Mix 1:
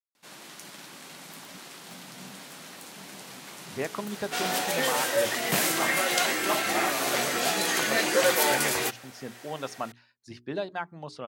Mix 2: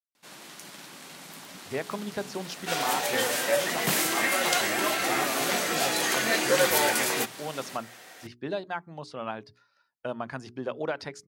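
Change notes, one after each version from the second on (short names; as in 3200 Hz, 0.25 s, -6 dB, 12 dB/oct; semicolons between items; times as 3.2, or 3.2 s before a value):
speech: entry -2.05 s; second sound: entry -1.65 s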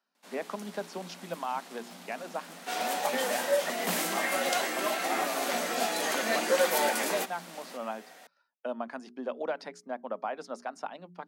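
speech: entry -1.40 s; master: add rippled Chebyshev high-pass 170 Hz, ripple 6 dB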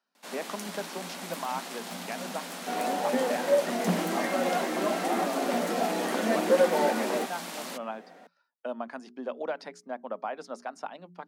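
first sound +9.5 dB; second sound: add tilt -4.5 dB/oct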